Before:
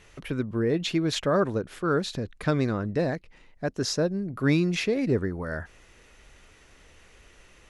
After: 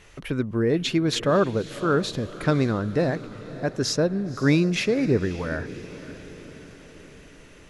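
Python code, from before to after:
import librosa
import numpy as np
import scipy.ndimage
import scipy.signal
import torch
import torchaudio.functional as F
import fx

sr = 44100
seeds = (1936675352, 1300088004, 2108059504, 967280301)

y = fx.echo_diffused(x, sr, ms=558, feedback_pct=56, wet_db=-15.5)
y = y * librosa.db_to_amplitude(3.0)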